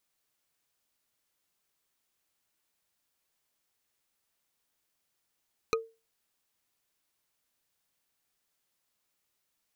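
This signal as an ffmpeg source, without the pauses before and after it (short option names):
-f lavfi -i "aevalsrc='0.0794*pow(10,-3*t/0.28)*sin(2*PI*452*t)+0.0668*pow(10,-3*t/0.083)*sin(2*PI*1246.2*t)+0.0562*pow(10,-3*t/0.037)*sin(2*PI*2442.6*t)+0.0473*pow(10,-3*t/0.02)*sin(2*PI*4037.7*t)+0.0398*pow(10,-3*t/0.013)*sin(2*PI*6029.7*t)':d=0.45:s=44100"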